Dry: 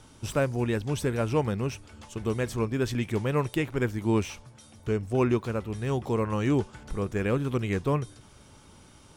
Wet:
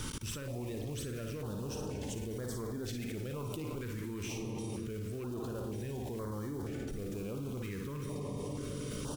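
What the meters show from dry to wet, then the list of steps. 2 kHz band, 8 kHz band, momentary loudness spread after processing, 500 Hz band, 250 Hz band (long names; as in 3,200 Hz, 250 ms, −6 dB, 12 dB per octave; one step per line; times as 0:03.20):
−13.5 dB, −2.0 dB, 1 LU, −12.0 dB, −10.0 dB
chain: one scale factor per block 5 bits
high-shelf EQ 8,600 Hz +3.5 dB
comb and all-pass reverb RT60 3.2 s, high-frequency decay 0.3×, pre-delay 115 ms, DRR 11.5 dB
reversed playback
downward compressor 6 to 1, threshold −32 dBFS, peak gain reduction 12.5 dB
reversed playback
sine wavefolder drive 5 dB, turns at −21 dBFS
multi-tap delay 41/53/57/112 ms −17.5/−13.5/−6.5/−13.5 dB
output level in coarse steps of 22 dB
notch on a step sequencer 2.1 Hz 700–2,600 Hz
level +5.5 dB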